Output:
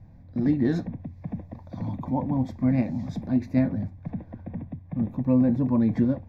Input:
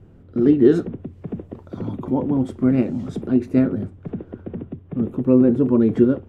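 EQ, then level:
phaser with its sweep stopped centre 2,000 Hz, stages 8
0.0 dB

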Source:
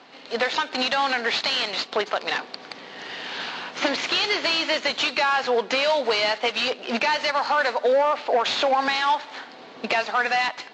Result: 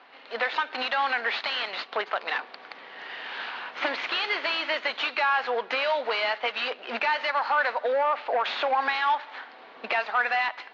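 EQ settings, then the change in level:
resonant band-pass 1,600 Hz, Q 0.62
high-frequency loss of the air 160 metres
0.0 dB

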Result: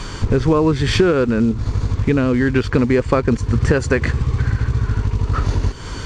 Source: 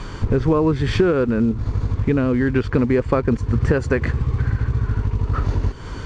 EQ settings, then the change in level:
high-shelf EQ 3,300 Hz +11 dB
+2.0 dB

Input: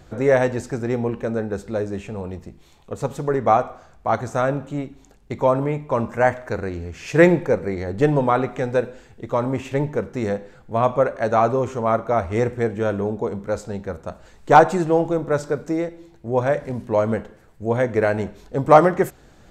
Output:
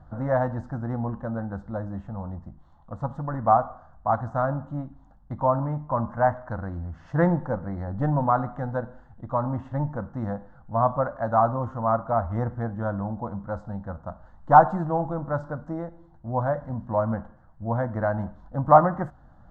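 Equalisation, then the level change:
low-pass filter 1,400 Hz 12 dB per octave
phaser with its sweep stopped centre 1,000 Hz, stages 4
0.0 dB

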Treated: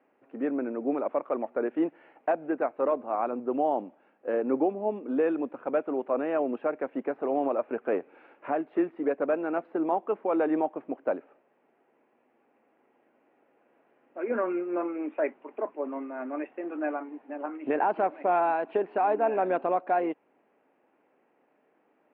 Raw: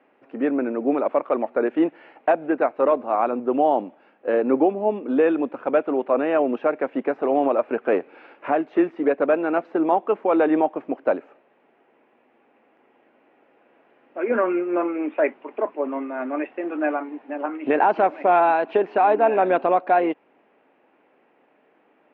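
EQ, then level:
high-frequency loss of the air 310 metres
−6.5 dB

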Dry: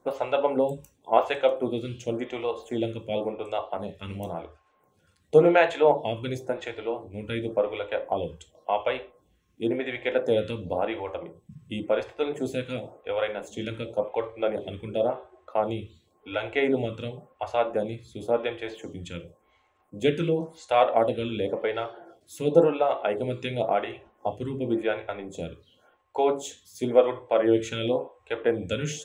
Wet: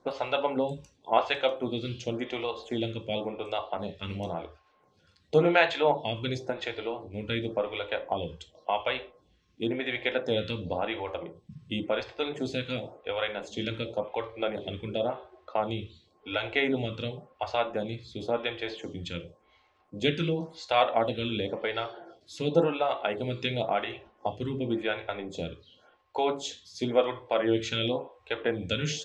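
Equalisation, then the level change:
dynamic equaliser 470 Hz, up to −6 dB, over −32 dBFS, Q 0.96
low-pass with resonance 4,700 Hz, resonance Q 2.7
0.0 dB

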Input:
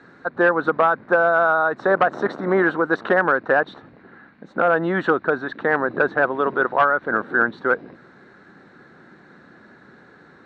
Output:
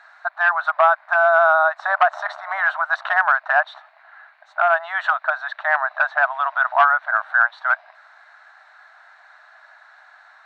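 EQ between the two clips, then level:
linear-phase brick-wall high-pass 600 Hz
+3.0 dB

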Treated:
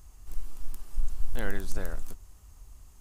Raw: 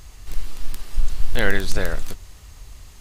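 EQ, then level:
graphic EQ with 10 bands 125 Hz −5 dB, 500 Hz −5 dB, 2,000 Hz −8 dB, 4,000 Hz −10 dB
−8.0 dB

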